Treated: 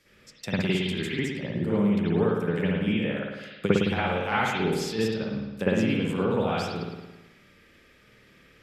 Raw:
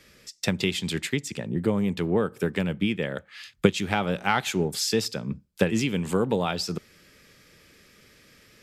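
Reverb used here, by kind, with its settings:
spring reverb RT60 1.1 s, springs 54 ms, chirp 55 ms, DRR −9.5 dB
level −10 dB

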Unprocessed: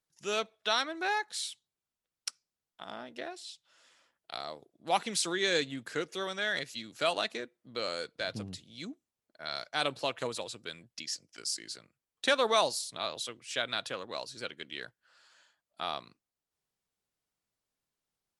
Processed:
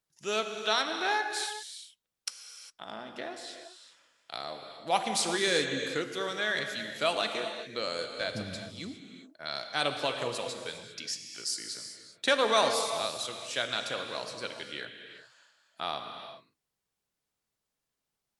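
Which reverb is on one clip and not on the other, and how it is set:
reverb whose tail is shaped and stops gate 430 ms flat, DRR 4.5 dB
level +1 dB

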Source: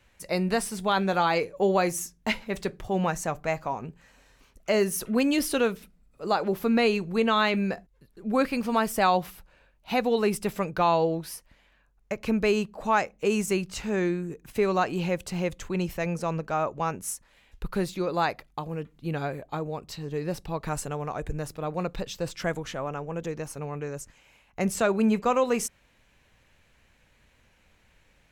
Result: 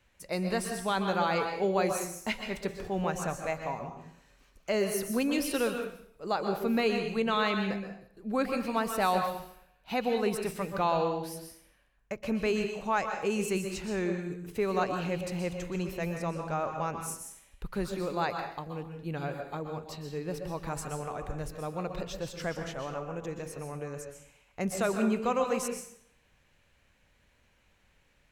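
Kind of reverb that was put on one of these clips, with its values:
dense smooth reverb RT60 0.63 s, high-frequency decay 0.9×, pre-delay 110 ms, DRR 5 dB
level −5.5 dB

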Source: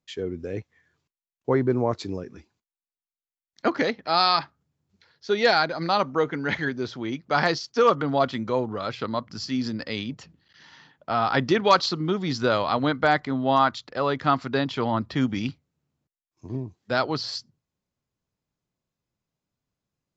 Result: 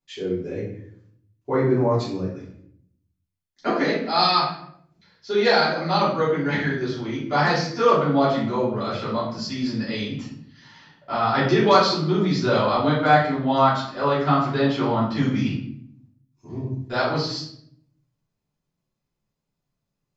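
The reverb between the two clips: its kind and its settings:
rectangular room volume 120 cubic metres, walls mixed, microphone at 3.1 metres
level −9 dB

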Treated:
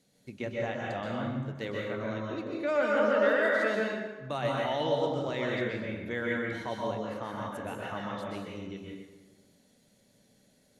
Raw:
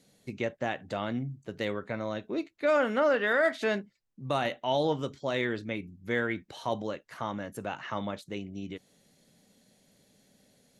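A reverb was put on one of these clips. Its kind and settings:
dense smooth reverb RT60 1.3 s, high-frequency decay 0.65×, pre-delay 115 ms, DRR −3 dB
level −5.5 dB

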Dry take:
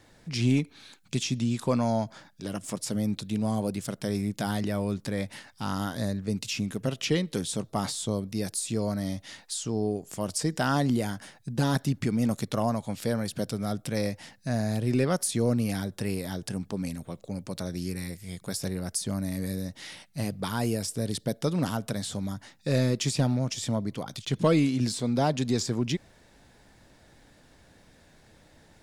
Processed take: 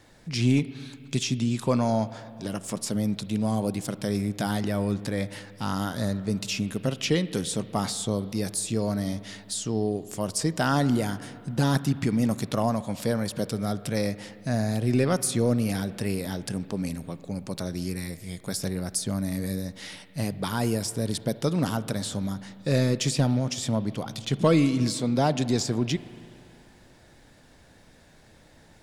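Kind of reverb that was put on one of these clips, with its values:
spring reverb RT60 2.5 s, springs 36/49 ms, chirp 35 ms, DRR 14.5 dB
level +2 dB

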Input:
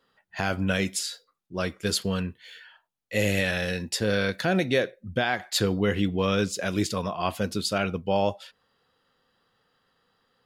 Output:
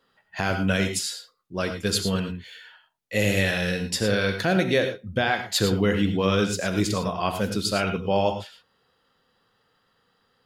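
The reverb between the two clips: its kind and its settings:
reverb whose tail is shaped and stops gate 130 ms rising, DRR 7 dB
level +1.5 dB

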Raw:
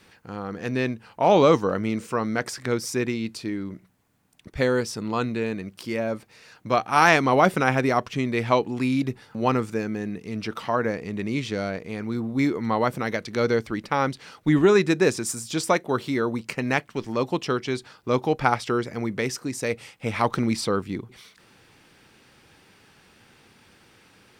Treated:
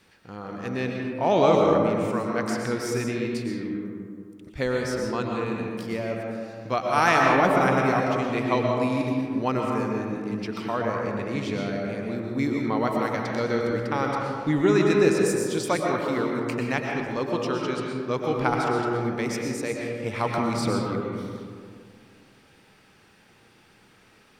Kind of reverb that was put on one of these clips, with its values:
comb and all-pass reverb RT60 2.2 s, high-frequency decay 0.35×, pre-delay 80 ms, DRR −0.5 dB
level −4.5 dB

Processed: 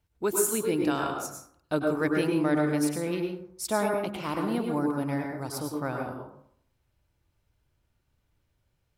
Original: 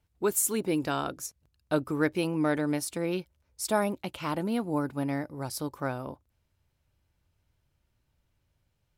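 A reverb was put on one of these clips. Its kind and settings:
dense smooth reverb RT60 0.64 s, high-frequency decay 0.45×, pre-delay 90 ms, DRR 1.5 dB
level −1 dB

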